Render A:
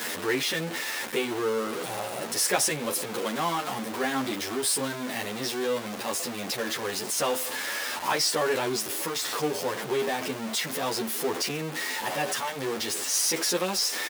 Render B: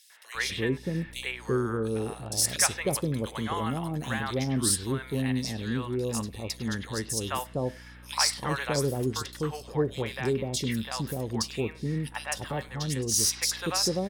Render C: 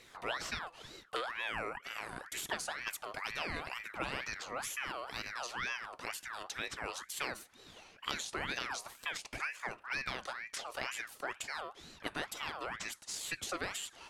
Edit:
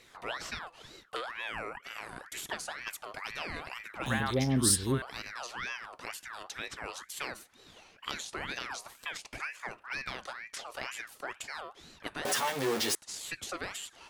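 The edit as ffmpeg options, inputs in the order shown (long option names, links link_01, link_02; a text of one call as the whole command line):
ffmpeg -i take0.wav -i take1.wav -i take2.wav -filter_complex "[2:a]asplit=3[link_01][link_02][link_03];[link_01]atrim=end=4.062[link_04];[1:a]atrim=start=4.058:end=5.022[link_05];[link_02]atrim=start=5.018:end=12.252[link_06];[0:a]atrim=start=12.248:end=12.952[link_07];[link_03]atrim=start=12.948[link_08];[link_04][link_05]acrossfade=duration=0.004:curve1=hsin:curve2=hsin[link_09];[link_09][link_06]acrossfade=duration=0.004:curve1=hsin:curve2=hsin[link_10];[link_10][link_07]acrossfade=duration=0.004:curve1=hsin:curve2=hsin[link_11];[link_11][link_08]acrossfade=duration=0.004:curve1=hsin:curve2=hsin" out.wav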